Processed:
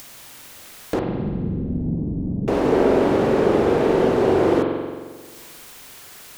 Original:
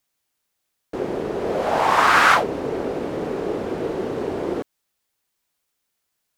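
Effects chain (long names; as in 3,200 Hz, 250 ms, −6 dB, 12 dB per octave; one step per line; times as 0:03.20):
0:00.99–0:02.48: inverse Chebyshev low-pass filter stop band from 1,300 Hz, stop band 80 dB
upward compression, threshold −26 dBFS
spring reverb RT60 1.6 s, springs 44 ms, chirp 25 ms, DRR 1 dB
level +6 dB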